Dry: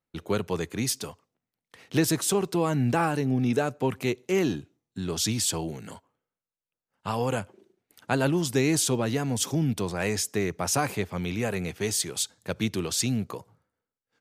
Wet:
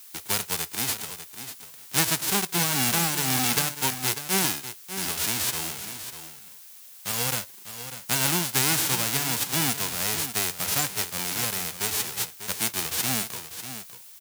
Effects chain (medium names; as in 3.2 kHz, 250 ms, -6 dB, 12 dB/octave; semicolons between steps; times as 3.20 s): formants flattened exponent 0.1; delay 595 ms -11 dB; added noise blue -47 dBFS